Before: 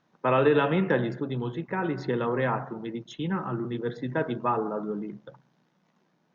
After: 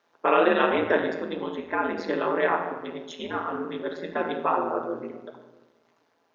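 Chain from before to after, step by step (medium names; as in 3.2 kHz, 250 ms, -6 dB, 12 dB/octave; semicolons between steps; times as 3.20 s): high-pass 370 Hz 24 dB/octave; simulated room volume 700 m³, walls mixed, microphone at 1 m; ring modulator 83 Hz; trim +5.5 dB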